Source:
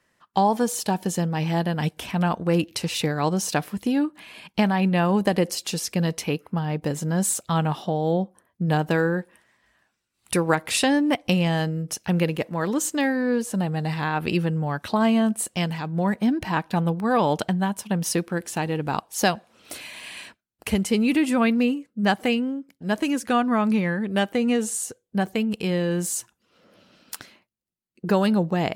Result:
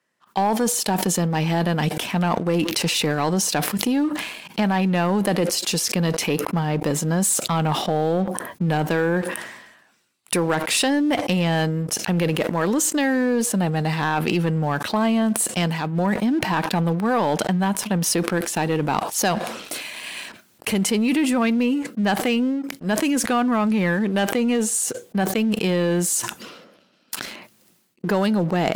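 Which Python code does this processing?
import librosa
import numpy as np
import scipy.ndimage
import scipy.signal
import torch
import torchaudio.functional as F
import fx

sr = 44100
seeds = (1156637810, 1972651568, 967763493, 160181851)

p1 = scipy.signal.sosfilt(scipy.signal.butter(2, 160.0, 'highpass', fs=sr, output='sos'), x)
p2 = fx.over_compress(p1, sr, threshold_db=-25.0, ratio=-1.0)
p3 = p1 + (p2 * 10.0 ** (0.0 / 20.0))
p4 = fx.leveller(p3, sr, passes=2)
p5 = fx.sustainer(p4, sr, db_per_s=55.0)
y = p5 * 10.0 ** (-9.0 / 20.0)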